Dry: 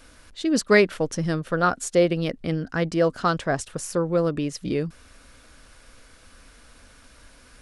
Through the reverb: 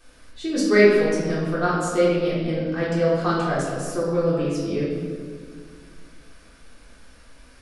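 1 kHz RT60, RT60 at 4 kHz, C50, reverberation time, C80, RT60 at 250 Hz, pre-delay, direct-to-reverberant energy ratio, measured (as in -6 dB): 1.6 s, 1.3 s, -0.5 dB, 1.9 s, 2.0 dB, 2.8 s, 3 ms, -8.5 dB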